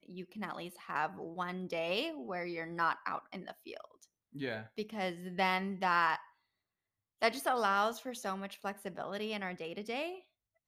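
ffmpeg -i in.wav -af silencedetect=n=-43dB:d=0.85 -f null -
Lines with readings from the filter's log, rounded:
silence_start: 6.20
silence_end: 7.22 | silence_duration: 1.01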